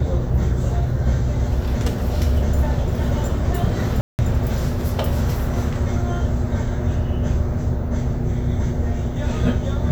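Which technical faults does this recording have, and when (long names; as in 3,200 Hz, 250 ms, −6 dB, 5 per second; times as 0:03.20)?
0:04.01–0:04.19: drop-out 179 ms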